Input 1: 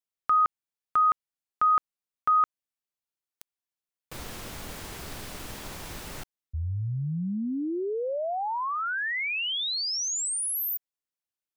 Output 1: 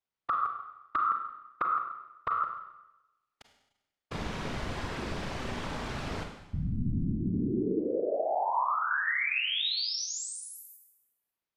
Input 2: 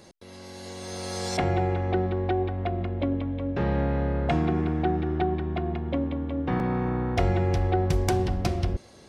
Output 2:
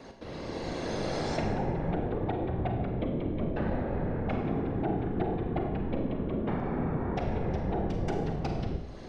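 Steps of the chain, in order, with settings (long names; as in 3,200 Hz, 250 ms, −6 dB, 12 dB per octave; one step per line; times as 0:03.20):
low-pass filter 6,000 Hz 12 dB per octave
high-shelf EQ 3,900 Hz −10.5 dB
downward compressor 5 to 1, threshold −35 dBFS
random phases in short frames
four-comb reverb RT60 0.95 s, combs from 33 ms, DRR 4 dB
level +5 dB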